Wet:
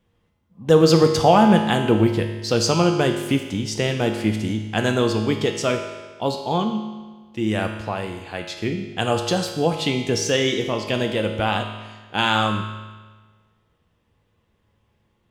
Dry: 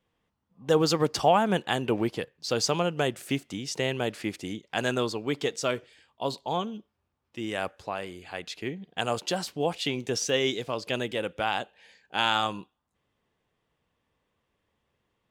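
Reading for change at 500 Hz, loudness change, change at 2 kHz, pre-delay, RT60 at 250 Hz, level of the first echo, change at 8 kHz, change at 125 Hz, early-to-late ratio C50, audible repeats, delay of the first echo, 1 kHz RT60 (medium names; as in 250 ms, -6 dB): +8.0 dB, +8.0 dB, +6.0 dB, 4 ms, 1.4 s, no echo, +5.0 dB, +12.0 dB, 6.0 dB, no echo, no echo, 1.4 s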